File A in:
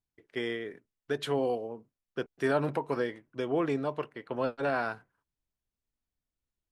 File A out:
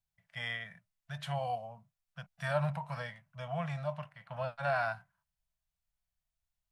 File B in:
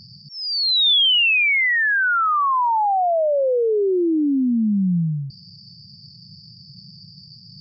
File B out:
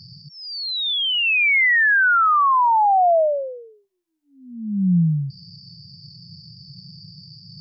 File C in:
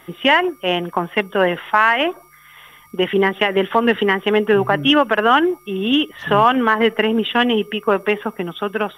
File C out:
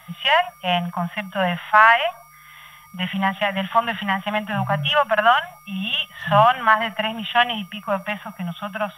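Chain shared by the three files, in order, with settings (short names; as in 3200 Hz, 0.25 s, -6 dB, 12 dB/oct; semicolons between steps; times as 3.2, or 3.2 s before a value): elliptic band-stop 180–640 Hz, stop band 60 dB; harmonic-percussive split percussive -11 dB; gain +3.5 dB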